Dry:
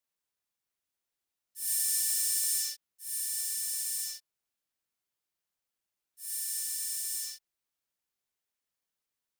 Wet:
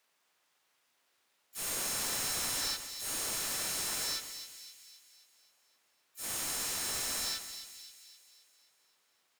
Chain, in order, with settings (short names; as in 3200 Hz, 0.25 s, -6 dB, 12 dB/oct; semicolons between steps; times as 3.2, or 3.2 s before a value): overdrive pedal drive 32 dB, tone 2900 Hz, clips at -14.5 dBFS; harmoniser -5 st -3 dB, -3 st -8 dB, +5 st -8 dB; split-band echo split 2000 Hz, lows 0.132 s, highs 0.263 s, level -10 dB; gain -8.5 dB